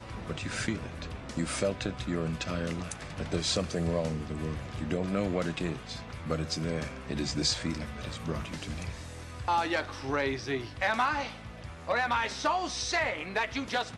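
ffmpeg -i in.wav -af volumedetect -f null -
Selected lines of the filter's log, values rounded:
mean_volume: -32.5 dB
max_volume: -15.7 dB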